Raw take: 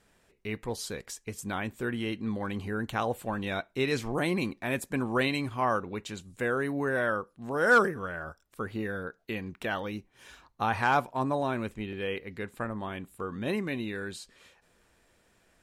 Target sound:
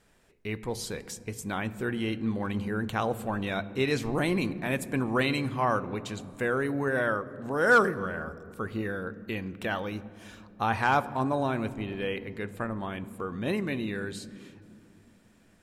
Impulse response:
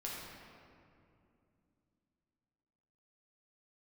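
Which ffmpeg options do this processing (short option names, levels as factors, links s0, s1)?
-filter_complex "[0:a]asplit=2[s0][s1];[s1]lowshelf=f=480:g=10.5[s2];[1:a]atrim=start_sample=2205[s3];[s2][s3]afir=irnorm=-1:irlink=0,volume=0.15[s4];[s0][s4]amix=inputs=2:normalize=0"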